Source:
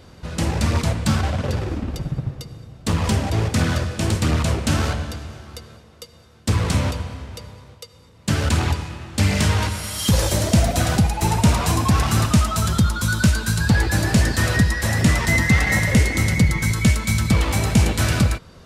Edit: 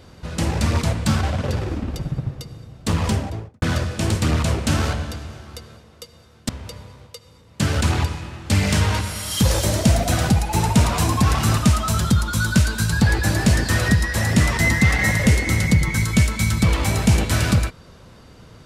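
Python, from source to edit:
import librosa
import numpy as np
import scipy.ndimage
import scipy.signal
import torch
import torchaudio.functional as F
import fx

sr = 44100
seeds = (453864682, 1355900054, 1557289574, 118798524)

y = fx.studio_fade_out(x, sr, start_s=3.0, length_s=0.62)
y = fx.edit(y, sr, fx.cut(start_s=6.49, length_s=0.68), tone=tone)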